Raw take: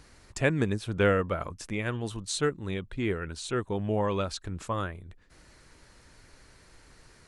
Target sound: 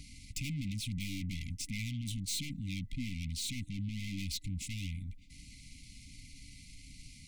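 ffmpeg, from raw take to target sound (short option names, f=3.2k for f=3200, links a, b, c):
-af "acontrast=66,aeval=exprs='(tanh(50.1*val(0)+0.4)-tanh(0.4))/50.1':c=same,afftfilt=real='re*(1-between(b*sr/4096,300,2000))':imag='im*(1-between(b*sr/4096,300,2000))':win_size=4096:overlap=0.75"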